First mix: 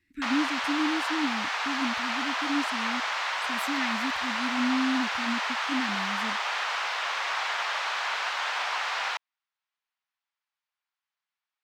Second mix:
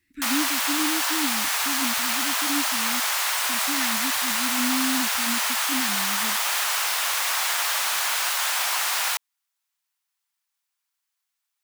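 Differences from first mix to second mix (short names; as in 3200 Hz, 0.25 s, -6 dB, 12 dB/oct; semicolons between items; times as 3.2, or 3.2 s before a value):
background: remove air absorption 160 m; master: add high shelf 5600 Hz +8.5 dB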